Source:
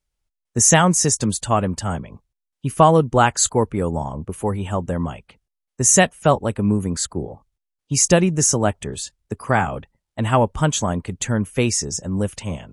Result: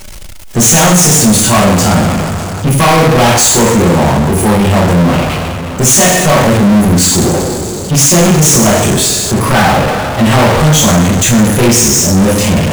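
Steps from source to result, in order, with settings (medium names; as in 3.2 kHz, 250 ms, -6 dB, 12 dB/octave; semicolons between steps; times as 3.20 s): overload inside the chain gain 16.5 dB; two-slope reverb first 0.75 s, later 2 s, from -18 dB, DRR -8.5 dB; power-law waveshaper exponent 0.35; trim -3.5 dB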